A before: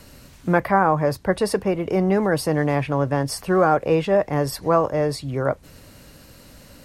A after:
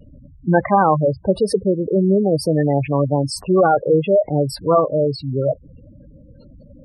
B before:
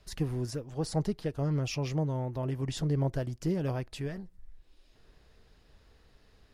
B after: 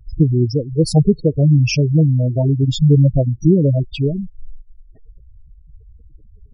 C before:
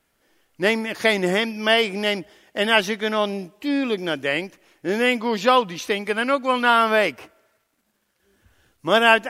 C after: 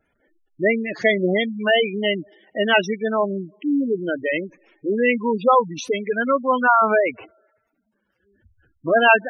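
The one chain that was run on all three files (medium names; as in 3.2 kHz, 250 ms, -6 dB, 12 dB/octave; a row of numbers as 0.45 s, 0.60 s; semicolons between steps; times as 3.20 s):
vibrato 1.7 Hz 31 cents; spectral gate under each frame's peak -10 dB strong; peak normalisation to -2 dBFS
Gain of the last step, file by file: +4.5 dB, +18.5 dB, +2.5 dB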